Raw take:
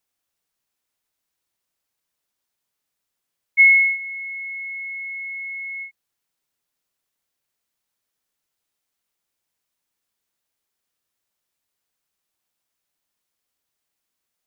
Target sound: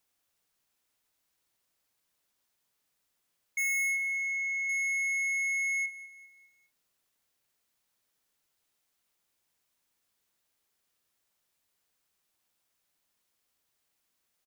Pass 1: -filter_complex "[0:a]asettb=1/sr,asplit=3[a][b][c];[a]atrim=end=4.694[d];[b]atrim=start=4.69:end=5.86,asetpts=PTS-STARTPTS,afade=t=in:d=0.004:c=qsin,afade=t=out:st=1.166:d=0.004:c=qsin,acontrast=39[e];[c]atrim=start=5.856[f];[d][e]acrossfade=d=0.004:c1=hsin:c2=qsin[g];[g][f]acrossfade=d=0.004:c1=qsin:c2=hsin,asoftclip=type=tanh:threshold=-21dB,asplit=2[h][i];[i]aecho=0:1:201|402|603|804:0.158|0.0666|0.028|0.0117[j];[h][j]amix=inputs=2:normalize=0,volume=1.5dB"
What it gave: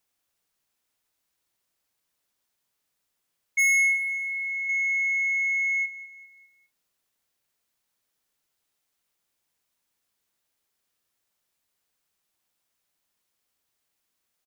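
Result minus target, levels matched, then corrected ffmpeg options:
soft clip: distortion -4 dB
-filter_complex "[0:a]asettb=1/sr,asplit=3[a][b][c];[a]atrim=end=4.694[d];[b]atrim=start=4.69:end=5.86,asetpts=PTS-STARTPTS,afade=t=in:d=0.004:c=qsin,afade=t=out:st=1.166:d=0.004:c=qsin,acontrast=39[e];[c]atrim=start=5.856[f];[d][e]acrossfade=d=0.004:c1=hsin:c2=qsin[g];[g][f]acrossfade=d=0.004:c1=qsin:c2=hsin,asoftclip=type=tanh:threshold=-30.5dB,asplit=2[h][i];[i]aecho=0:1:201|402|603|804:0.158|0.0666|0.028|0.0117[j];[h][j]amix=inputs=2:normalize=0,volume=1.5dB"

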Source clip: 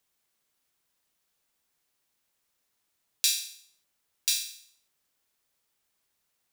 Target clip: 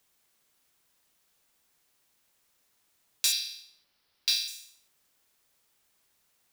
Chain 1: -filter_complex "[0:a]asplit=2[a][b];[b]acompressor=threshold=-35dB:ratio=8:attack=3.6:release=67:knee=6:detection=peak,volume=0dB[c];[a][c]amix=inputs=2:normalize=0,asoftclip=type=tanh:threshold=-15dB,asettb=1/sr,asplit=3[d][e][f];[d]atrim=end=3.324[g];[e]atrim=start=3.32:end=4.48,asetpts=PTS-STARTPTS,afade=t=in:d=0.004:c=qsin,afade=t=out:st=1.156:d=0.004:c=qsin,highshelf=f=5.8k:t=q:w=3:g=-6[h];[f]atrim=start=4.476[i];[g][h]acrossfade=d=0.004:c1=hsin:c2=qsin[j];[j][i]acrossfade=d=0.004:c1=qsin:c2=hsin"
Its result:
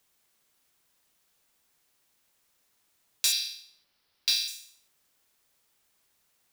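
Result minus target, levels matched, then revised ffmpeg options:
compressor: peak gain reduction -8.5 dB
-filter_complex "[0:a]asplit=2[a][b];[b]acompressor=threshold=-44.5dB:ratio=8:attack=3.6:release=67:knee=6:detection=peak,volume=0dB[c];[a][c]amix=inputs=2:normalize=0,asoftclip=type=tanh:threshold=-15dB,asettb=1/sr,asplit=3[d][e][f];[d]atrim=end=3.324[g];[e]atrim=start=3.32:end=4.48,asetpts=PTS-STARTPTS,afade=t=in:d=0.004:c=qsin,afade=t=out:st=1.156:d=0.004:c=qsin,highshelf=f=5.8k:t=q:w=3:g=-6[h];[f]atrim=start=4.476[i];[g][h]acrossfade=d=0.004:c1=hsin:c2=qsin[j];[j][i]acrossfade=d=0.004:c1=qsin:c2=hsin"

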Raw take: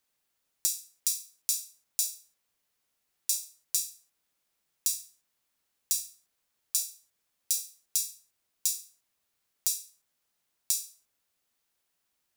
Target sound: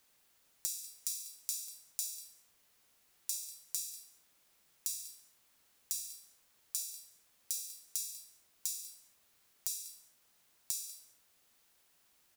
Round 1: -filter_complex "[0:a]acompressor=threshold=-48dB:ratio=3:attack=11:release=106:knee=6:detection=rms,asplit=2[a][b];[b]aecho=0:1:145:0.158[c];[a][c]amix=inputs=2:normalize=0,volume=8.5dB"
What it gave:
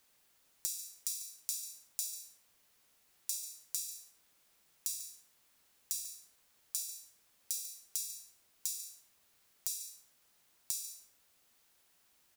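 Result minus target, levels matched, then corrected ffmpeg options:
echo 48 ms early
-filter_complex "[0:a]acompressor=threshold=-48dB:ratio=3:attack=11:release=106:knee=6:detection=rms,asplit=2[a][b];[b]aecho=0:1:193:0.158[c];[a][c]amix=inputs=2:normalize=0,volume=8.5dB"

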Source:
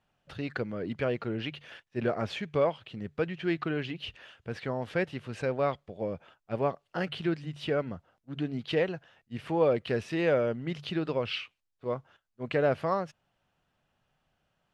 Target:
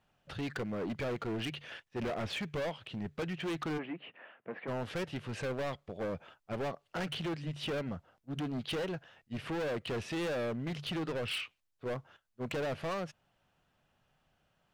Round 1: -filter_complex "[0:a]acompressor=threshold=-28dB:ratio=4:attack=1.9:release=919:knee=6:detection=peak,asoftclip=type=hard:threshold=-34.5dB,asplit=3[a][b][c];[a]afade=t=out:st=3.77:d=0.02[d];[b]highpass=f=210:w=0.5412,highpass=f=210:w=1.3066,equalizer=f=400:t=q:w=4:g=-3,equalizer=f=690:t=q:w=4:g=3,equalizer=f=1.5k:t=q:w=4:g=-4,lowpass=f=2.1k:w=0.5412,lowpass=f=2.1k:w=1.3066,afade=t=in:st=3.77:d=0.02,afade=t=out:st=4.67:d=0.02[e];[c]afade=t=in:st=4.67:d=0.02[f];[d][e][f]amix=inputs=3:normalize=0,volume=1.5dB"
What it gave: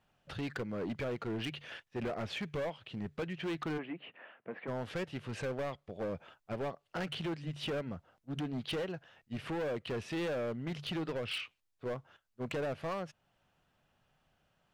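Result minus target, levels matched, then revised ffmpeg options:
compressor: peak gain reduction +5.5 dB
-filter_complex "[0:a]acompressor=threshold=-20.5dB:ratio=4:attack=1.9:release=919:knee=6:detection=peak,asoftclip=type=hard:threshold=-34.5dB,asplit=3[a][b][c];[a]afade=t=out:st=3.77:d=0.02[d];[b]highpass=f=210:w=0.5412,highpass=f=210:w=1.3066,equalizer=f=400:t=q:w=4:g=-3,equalizer=f=690:t=q:w=4:g=3,equalizer=f=1.5k:t=q:w=4:g=-4,lowpass=f=2.1k:w=0.5412,lowpass=f=2.1k:w=1.3066,afade=t=in:st=3.77:d=0.02,afade=t=out:st=4.67:d=0.02[e];[c]afade=t=in:st=4.67:d=0.02[f];[d][e][f]amix=inputs=3:normalize=0,volume=1.5dB"

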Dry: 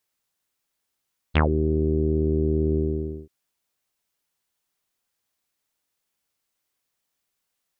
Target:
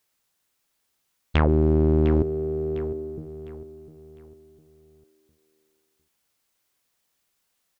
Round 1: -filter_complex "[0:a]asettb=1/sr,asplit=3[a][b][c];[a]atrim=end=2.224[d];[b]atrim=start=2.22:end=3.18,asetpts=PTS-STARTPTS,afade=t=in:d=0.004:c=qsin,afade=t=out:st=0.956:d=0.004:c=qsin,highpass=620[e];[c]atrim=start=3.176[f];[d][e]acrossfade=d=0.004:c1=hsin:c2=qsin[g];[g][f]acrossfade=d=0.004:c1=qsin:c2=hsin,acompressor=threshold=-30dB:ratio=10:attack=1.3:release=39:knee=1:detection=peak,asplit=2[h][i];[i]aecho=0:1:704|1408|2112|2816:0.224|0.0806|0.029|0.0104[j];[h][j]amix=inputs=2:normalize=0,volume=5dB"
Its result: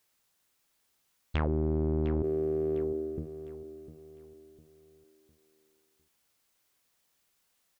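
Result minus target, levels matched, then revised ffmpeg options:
compressor: peak gain reduction +10 dB
-filter_complex "[0:a]asettb=1/sr,asplit=3[a][b][c];[a]atrim=end=2.224[d];[b]atrim=start=2.22:end=3.18,asetpts=PTS-STARTPTS,afade=t=in:d=0.004:c=qsin,afade=t=out:st=0.956:d=0.004:c=qsin,highpass=620[e];[c]atrim=start=3.176[f];[d][e]acrossfade=d=0.004:c1=hsin:c2=qsin[g];[g][f]acrossfade=d=0.004:c1=qsin:c2=hsin,acompressor=threshold=-19dB:ratio=10:attack=1.3:release=39:knee=1:detection=peak,asplit=2[h][i];[i]aecho=0:1:704|1408|2112|2816:0.224|0.0806|0.029|0.0104[j];[h][j]amix=inputs=2:normalize=0,volume=5dB"

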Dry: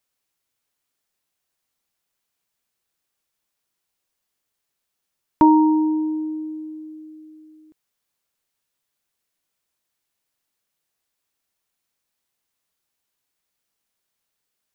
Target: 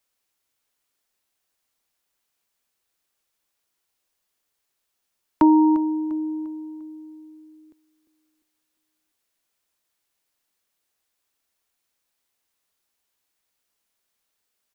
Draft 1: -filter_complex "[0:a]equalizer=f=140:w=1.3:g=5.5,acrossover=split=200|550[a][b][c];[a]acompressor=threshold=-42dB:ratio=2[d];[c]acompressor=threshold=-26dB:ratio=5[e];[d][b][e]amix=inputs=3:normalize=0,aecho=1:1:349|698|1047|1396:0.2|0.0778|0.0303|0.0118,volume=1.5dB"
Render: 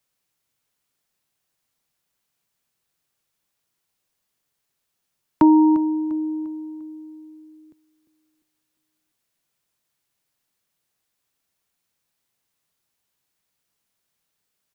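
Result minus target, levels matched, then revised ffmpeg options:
125 Hz band +5.0 dB
-filter_complex "[0:a]equalizer=f=140:w=1.3:g=-5.5,acrossover=split=200|550[a][b][c];[a]acompressor=threshold=-42dB:ratio=2[d];[c]acompressor=threshold=-26dB:ratio=5[e];[d][b][e]amix=inputs=3:normalize=0,aecho=1:1:349|698|1047|1396:0.2|0.0778|0.0303|0.0118,volume=1.5dB"

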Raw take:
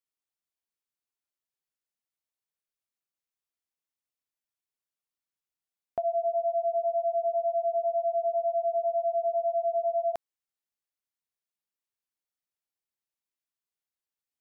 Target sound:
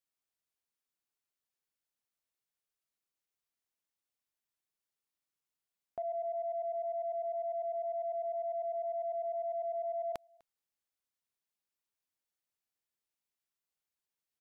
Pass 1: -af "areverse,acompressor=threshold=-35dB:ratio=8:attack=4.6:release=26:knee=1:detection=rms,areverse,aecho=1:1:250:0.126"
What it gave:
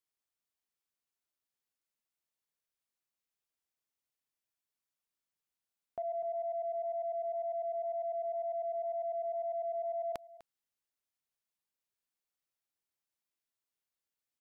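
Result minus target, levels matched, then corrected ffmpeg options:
echo-to-direct +10 dB
-af "areverse,acompressor=threshold=-35dB:ratio=8:attack=4.6:release=26:knee=1:detection=rms,areverse,aecho=1:1:250:0.0398"

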